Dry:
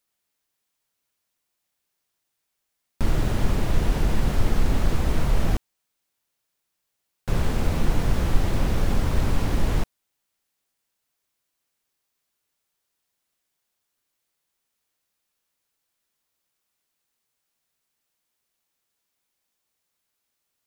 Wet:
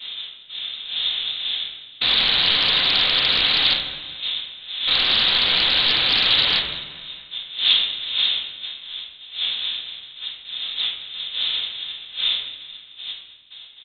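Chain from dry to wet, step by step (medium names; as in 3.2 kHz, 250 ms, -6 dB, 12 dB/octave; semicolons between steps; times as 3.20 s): wind noise 440 Hz -39 dBFS; gate with hold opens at -45 dBFS; high-pass 130 Hz 24 dB/octave; bass shelf 190 Hz -7 dB; in parallel at +0.5 dB: compression 10:1, threshold -39 dBFS, peak gain reduction 16.5 dB; on the sum: waveshaping leveller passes 1; frequency inversion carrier 3.9 kHz; feedback delay 323 ms, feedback 56%, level -16.5 dB; simulated room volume 1200 m³, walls mixed, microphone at 2 m; time stretch by phase-locked vocoder 0.67×; loudspeaker Doppler distortion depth 0.31 ms; trim +5.5 dB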